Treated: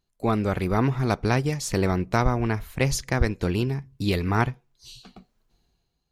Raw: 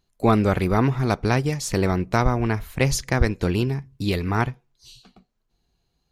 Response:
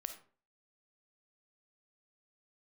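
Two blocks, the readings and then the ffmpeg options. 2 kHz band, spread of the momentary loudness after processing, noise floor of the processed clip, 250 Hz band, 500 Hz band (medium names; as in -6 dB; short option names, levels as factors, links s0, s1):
-2.0 dB, 4 LU, -75 dBFS, -2.5 dB, -2.5 dB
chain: -af "dynaudnorm=f=120:g=11:m=5.31,volume=0.501"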